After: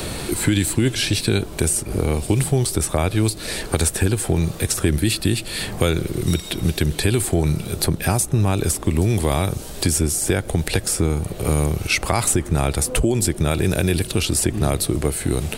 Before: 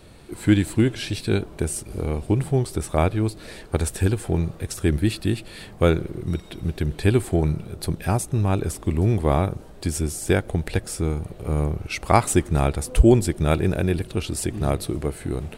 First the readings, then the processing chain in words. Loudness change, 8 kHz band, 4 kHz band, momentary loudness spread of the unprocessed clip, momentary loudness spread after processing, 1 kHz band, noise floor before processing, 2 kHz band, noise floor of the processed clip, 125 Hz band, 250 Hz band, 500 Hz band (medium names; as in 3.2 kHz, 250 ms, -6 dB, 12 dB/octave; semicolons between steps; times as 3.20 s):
+3.0 dB, +10.5 dB, +9.5 dB, 9 LU, 4 LU, -0.5 dB, -43 dBFS, +5.5 dB, -34 dBFS, +2.5 dB, +1.5 dB, +1.0 dB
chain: peak limiter -13.5 dBFS, peak gain reduction 11 dB; treble shelf 3.7 kHz +9.5 dB; three bands compressed up and down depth 70%; trim +4 dB